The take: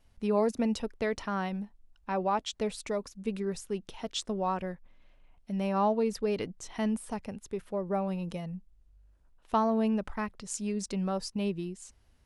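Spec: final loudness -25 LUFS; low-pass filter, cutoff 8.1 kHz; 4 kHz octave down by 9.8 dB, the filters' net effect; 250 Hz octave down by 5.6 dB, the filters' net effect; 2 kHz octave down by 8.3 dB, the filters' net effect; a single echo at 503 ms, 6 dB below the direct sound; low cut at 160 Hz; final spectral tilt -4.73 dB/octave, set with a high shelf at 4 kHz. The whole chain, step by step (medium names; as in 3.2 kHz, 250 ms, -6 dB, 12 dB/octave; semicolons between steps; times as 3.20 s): high-pass 160 Hz; low-pass 8.1 kHz; peaking EQ 250 Hz -5.5 dB; peaking EQ 2 kHz -8 dB; treble shelf 4 kHz -7 dB; peaking EQ 4 kHz -5.5 dB; delay 503 ms -6 dB; trim +10.5 dB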